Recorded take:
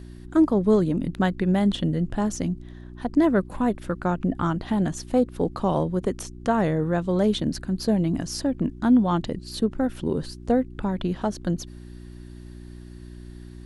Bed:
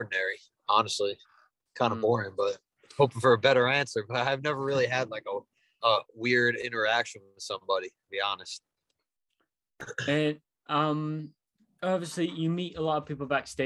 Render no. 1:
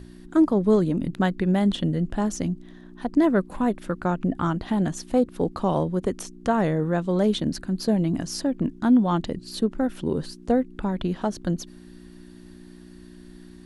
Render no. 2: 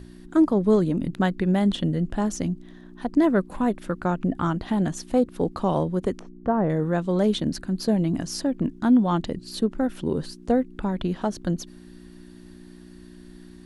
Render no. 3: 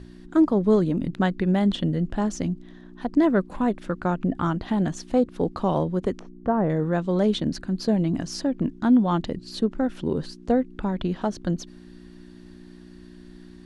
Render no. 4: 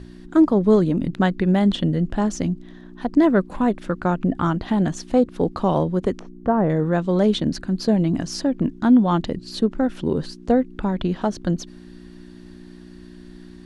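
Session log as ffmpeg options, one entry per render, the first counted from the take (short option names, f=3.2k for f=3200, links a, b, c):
-af "bandreject=f=60:t=h:w=4,bandreject=f=120:t=h:w=4"
-filter_complex "[0:a]asettb=1/sr,asplit=3[a][b][c];[a]atrim=end=6.194[d];[b]atrim=start=6.19:end=6.7,asetpts=PTS-STARTPTS,afade=t=in:d=0.004:c=qsin,afade=t=out:st=0.506:d=0.004:c=qsin,lowpass=1.1k[e];[c]atrim=start=6.696[f];[d][e]acrossfade=d=0.004:c1=hsin:c2=qsin[g];[g][f]acrossfade=d=0.004:c1=qsin:c2=hsin"
-af "lowpass=6.9k"
-af "volume=3.5dB"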